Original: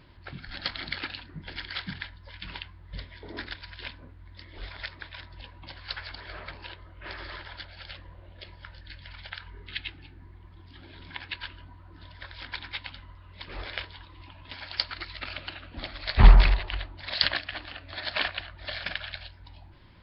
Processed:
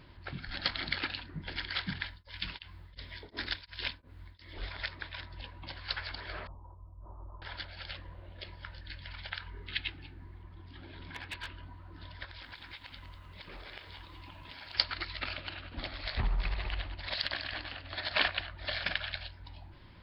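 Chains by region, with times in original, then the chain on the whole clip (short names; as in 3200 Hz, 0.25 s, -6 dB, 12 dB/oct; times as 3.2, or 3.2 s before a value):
2.06–4.54 high shelf 3600 Hz +10.5 dB + beating tremolo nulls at 2.8 Hz
6.47–7.42 steep low-pass 1100 Hz 72 dB/oct + bell 440 Hz -13.5 dB 2.5 oct
10.42–11.63 hard clip -33 dBFS + high shelf 3700 Hz -6.5 dB
12.24–14.75 compressor 10:1, threshold -43 dBFS + lo-fi delay 0.195 s, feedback 35%, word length 11-bit, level -9.5 dB
15.33–18.11 feedback echo 99 ms, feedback 56%, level -13.5 dB + compressor 4:1, threshold -29 dBFS + tremolo 15 Hz, depth 37%
whole clip: dry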